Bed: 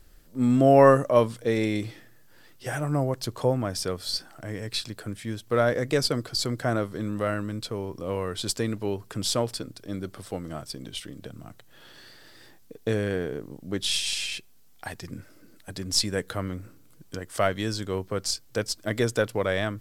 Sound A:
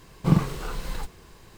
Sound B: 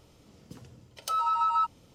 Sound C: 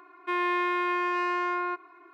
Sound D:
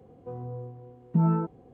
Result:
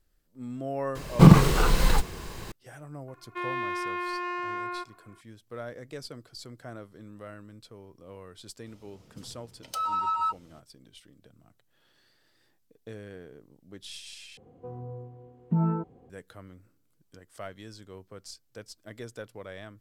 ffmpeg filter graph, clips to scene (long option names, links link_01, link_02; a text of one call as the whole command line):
ffmpeg -i bed.wav -i cue0.wav -i cue1.wav -i cue2.wav -i cue3.wav -filter_complex "[0:a]volume=-16.5dB[link_01];[1:a]alimiter=level_in=11dB:limit=-1dB:release=50:level=0:latency=1[link_02];[link_01]asplit=2[link_03][link_04];[link_03]atrim=end=14.374[link_05];[4:a]atrim=end=1.73,asetpts=PTS-STARTPTS,volume=-2.5dB[link_06];[link_04]atrim=start=16.096[link_07];[link_02]atrim=end=1.57,asetpts=PTS-STARTPTS,volume=-0.5dB,afade=type=in:duration=0.004:curve=hsin,afade=type=out:start_time=1.566:duration=0.004:curve=hsin,adelay=950[link_08];[3:a]atrim=end=2.13,asetpts=PTS-STARTPTS,volume=-5dB,afade=type=in:duration=0.004:curve=hsin,afade=type=out:start_time=2.126:duration=0.004:curve=hsin,adelay=3080[link_09];[2:a]atrim=end=1.94,asetpts=PTS-STARTPTS,volume=-2dB,afade=type=in:duration=0.004:curve=hsin,afade=type=out:start_time=1.936:duration=0.004:curve=hsin,adelay=381906S[link_10];[link_05][link_06]acrossfade=duration=0.004:curve1=hsin:curve2=hsin[link_11];[link_11][link_07]acrossfade=duration=0.004:curve1=hsin:curve2=hsin[link_12];[link_12][link_08][link_09][link_10]amix=inputs=4:normalize=0" out.wav